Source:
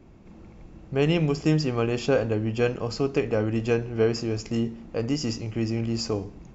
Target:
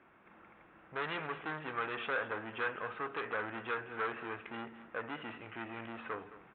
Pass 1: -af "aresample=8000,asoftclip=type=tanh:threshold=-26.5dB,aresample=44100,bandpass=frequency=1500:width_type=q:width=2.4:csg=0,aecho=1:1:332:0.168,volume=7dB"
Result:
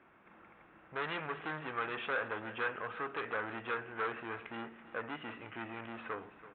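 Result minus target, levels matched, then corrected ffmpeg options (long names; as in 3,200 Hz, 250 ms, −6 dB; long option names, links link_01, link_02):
echo 118 ms late
-af "aresample=8000,asoftclip=type=tanh:threshold=-26.5dB,aresample=44100,bandpass=frequency=1500:width_type=q:width=2.4:csg=0,aecho=1:1:214:0.168,volume=7dB"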